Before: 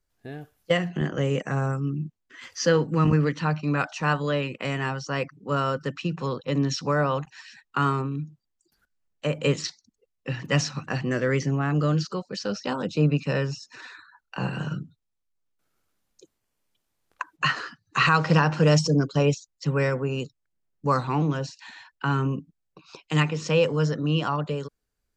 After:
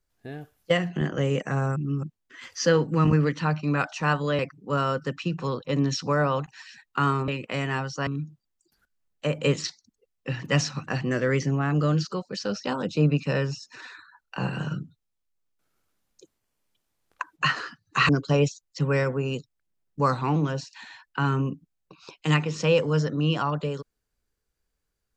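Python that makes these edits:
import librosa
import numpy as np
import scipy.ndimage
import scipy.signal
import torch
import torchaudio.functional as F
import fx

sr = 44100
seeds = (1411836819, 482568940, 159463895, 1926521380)

y = fx.edit(x, sr, fx.reverse_span(start_s=1.76, length_s=0.27),
    fx.move(start_s=4.39, length_s=0.79, to_s=8.07),
    fx.cut(start_s=18.09, length_s=0.86), tone=tone)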